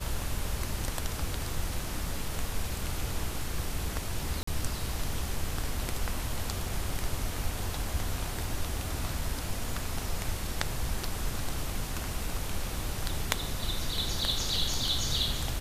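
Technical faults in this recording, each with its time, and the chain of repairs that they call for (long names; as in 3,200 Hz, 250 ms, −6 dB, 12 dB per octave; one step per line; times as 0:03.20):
0:04.43–0:04.47: drop-out 44 ms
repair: repair the gap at 0:04.43, 44 ms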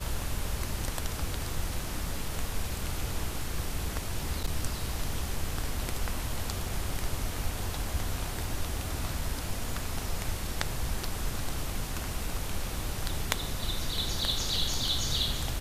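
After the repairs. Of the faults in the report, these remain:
none of them is left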